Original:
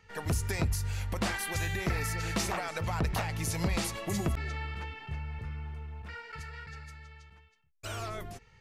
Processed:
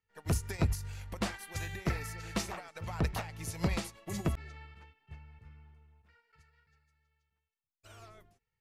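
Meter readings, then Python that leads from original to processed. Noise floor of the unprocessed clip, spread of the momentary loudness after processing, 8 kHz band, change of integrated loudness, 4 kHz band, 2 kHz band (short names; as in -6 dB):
-61 dBFS, 20 LU, -6.0 dB, -2.5 dB, -6.0 dB, -7.0 dB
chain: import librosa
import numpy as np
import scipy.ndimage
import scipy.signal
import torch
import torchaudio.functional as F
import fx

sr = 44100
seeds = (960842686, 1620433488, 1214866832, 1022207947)

y = fx.upward_expand(x, sr, threshold_db=-45.0, expansion=2.5)
y = y * librosa.db_to_amplitude(2.5)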